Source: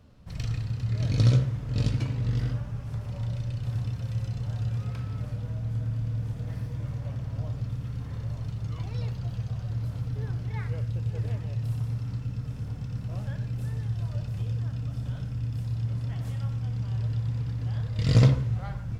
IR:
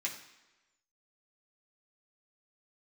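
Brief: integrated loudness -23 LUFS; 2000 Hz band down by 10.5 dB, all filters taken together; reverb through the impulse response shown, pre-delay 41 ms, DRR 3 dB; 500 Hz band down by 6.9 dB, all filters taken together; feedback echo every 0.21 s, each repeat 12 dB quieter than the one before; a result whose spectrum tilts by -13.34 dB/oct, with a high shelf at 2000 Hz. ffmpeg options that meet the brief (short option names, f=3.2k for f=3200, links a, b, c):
-filter_complex "[0:a]equalizer=f=500:t=o:g=-7,highshelf=f=2k:g=-8.5,equalizer=f=2k:t=o:g=-8,aecho=1:1:210|420|630:0.251|0.0628|0.0157,asplit=2[a][b];[1:a]atrim=start_sample=2205,adelay=41[c];[b][c]afir=irnorm=-1:irlink=0,volume=-5.5dB[d];[a][d]amix=inputs=2:normalize=0,volume=6.5dB"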